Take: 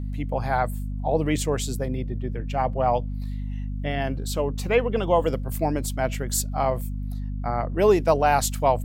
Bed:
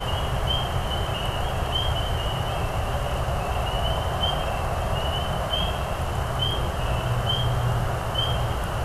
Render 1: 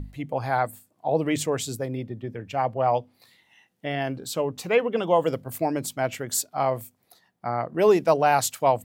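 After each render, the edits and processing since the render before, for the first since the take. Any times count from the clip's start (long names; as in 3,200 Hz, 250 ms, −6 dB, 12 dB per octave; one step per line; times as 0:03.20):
mains-hum notches 50/100/150/200/250 Hz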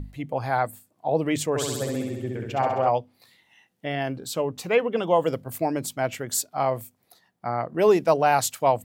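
0:01.49–0:02.89: flutter between parallel walls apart 11.3 metres, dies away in 1.1 s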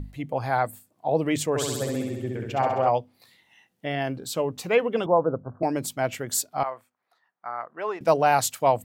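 0:05.06–0:05.63: Butterworth low-pass 1,500 Hz 96 dB per octave
0:06.63–0:08.01: resonant band-pass 1,300 Hz, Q 1.8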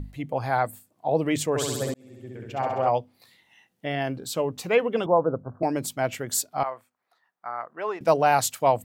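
0:01.94–0:02.99: fade in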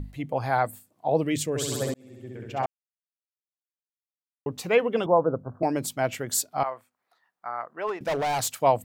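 0:01.23–0:01.72: parametric band 930 Hz −13.5 dB 1.2 octaves
0:02.66–0:04.46: silence
0:07.87–0:08.52: hard clipping −23.5 dBFS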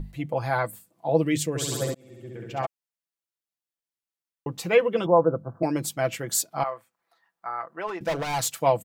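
dynamic equaliser 740 Hz, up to −4 dB, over −38 dBFS, Q 3.5
comb filter 6 ms, depth 55%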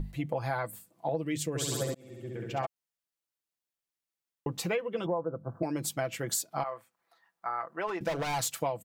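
downward compressor 10 to 1, threshold −28 dBFS, peak gain reduction 15.5 dB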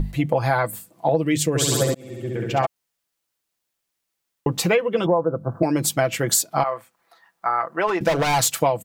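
level +12 dB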